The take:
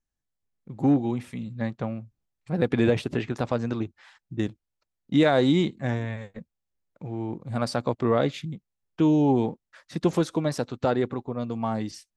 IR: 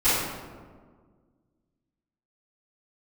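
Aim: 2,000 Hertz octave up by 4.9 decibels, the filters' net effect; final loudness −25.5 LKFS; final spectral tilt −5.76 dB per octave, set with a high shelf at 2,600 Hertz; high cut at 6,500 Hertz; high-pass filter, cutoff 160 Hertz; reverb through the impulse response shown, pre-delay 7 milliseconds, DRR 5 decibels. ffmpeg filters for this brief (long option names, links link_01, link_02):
-filter_complex "[0:a]highpass=160,lowpass=6500,equalizer=frequency=2000:width_type=o:gain=8.5,highshelf=frequency=2600:gain=-5.5,asplit=2[link_01][link_02];[1:a]atrim=start_sample=2205,adelay=7[link_03];[link_02][link_03]afir=irnorm=-1:irlink=0,volume=-22dB[link_04];[link_01][link_04]amix=inputs=2:normalize=0,volume=-0.5dB"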